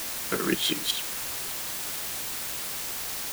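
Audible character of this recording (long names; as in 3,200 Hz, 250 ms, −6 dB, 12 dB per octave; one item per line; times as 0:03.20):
tremolo saw up 5.5 Hz, depth 85%
a quantiser's noise floor 6 bits, dither triangular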